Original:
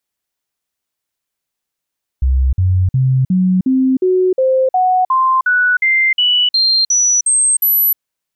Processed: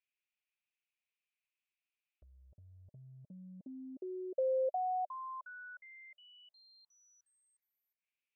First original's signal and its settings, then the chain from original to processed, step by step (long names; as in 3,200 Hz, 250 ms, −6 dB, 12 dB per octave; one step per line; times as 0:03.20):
stepped sweep 65.3 Hz up, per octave 2, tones 16, 0.31 s, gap 0.05 s −9.5 dBFS
treble cut that deepens with the level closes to 1,300 Hz
downward compressor 3 to 1, threshold −29 dBFS
envelope filter 600–2,500 Hz, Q 6.7, down, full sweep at −29 dBFS